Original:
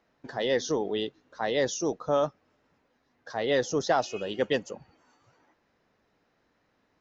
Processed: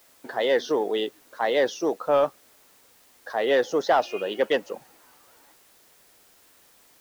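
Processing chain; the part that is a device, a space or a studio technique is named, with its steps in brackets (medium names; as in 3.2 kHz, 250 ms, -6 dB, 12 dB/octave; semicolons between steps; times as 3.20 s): tape answering machine (band-pass 340–3200 Hz; saturation -17.5 dBFS, distortion -21 dB; wow and flutter; white noise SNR 31 dB); trim +6.5 dB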